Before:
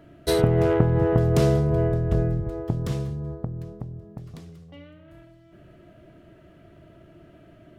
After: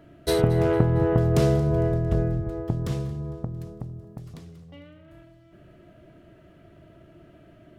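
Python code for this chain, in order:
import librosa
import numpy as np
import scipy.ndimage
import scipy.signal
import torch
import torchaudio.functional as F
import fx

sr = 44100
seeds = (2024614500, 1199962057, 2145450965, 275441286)

p1 = fx.peak_eq(x, sr, hz=11000.0, db=7.0, octaves=1.9, at=(3.53, 4.34))
p2 = p1 + fx.echo_feedback(p1, sr, ms=227, feedback_pct=49, wet_db=-19.5, dry=0)
y = F.gain(torch.from_numpy(p2), -1.0).numpy()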